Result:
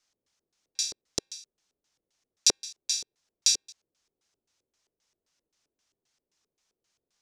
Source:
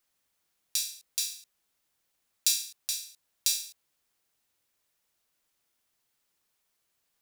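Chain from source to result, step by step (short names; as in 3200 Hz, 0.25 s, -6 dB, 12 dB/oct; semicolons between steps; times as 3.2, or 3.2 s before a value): dynamic EQ 1100 Hz, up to +4 dB, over -48 dBFS, Q 0.8; LFO low-pass square 3.8 Hz 420–6000 Hz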